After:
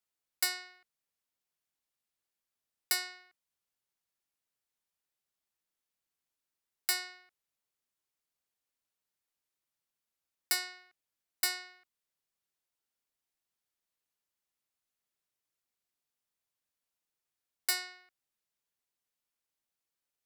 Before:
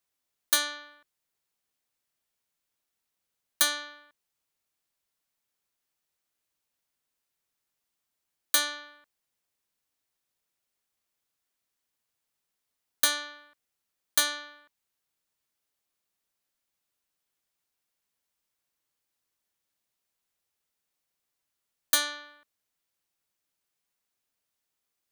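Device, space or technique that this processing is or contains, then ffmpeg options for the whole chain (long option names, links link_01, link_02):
nightcore: -af "asetrate=54684,aresample=44100,volume=-5.5dB"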